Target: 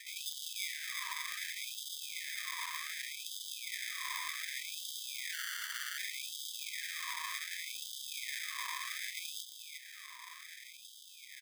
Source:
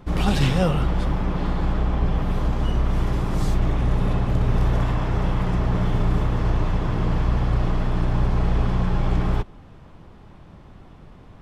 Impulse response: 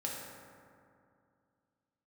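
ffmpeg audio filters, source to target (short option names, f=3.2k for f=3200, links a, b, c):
-filter_complex "[0:a]highpass=690,lowpass=3.9k,acompressor=threshold=-49dB:ratio=2.5,asplit=2[a][b];[b]adelay=361,lowpass=f=2k:p=1,volume=-7dB,asplit=2[c][d];[d]adelay=361,lowpass=f=2k:p=1,volume=0.52,asplit=2[e][f];[f]adelay=361,lowpass=f=2k:p=1,volume=0.52,asplit=2[g][h];[h]adelay=361,lowpass=f=2k:p=1,volume=0.52,asplit=2[i][j];[j]adelay=361,lowpass=f=2k:p=1,volume=0.52,asplit=2[k][l];[l]adelay=361,lowpass=f=2k:p=1,volume=0.52[m];[a][c][e][g][i][k][m]amix=inputs=7:normalize=0,acrusher=samples=31:mix=1:aa=0.000001,asettb=1/sr,asplit=3[n][o][p];[n]atrim=end=5.334[q];[o]atrim=start=5.33:end=5.98,asetpts=PTS-STARTPTS,afade=t=in:d=0.004:c=qsin,afade=t=out:st=0.646:d=0.004:c=qsin,afreqshift=-370[r];[p]atrim=start=5.976[s];[q][r]acrossfade=d=0.004:c1=hsin:c2=qsin[t];[t][s]acrossfade=d=0.004:c1=qsin:c2=hsin,afftfilt=real='re*gte(b*sr/1024,930*pow(2800/930,0.5+0.5*sin(2*PI*0.66*pts/sr)))':imag='im*gte(b*sr/1024,930*pow(2800/930,0.5+0.5*sin(2*PI*0.66*pts/sr)))':win_size=1024:overlap=0.75,volume=13.5dB"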